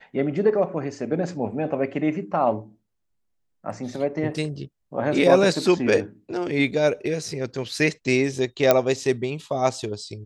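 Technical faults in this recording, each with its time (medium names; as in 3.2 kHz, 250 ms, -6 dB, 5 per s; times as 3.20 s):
8.71 s: pop -2 dBFS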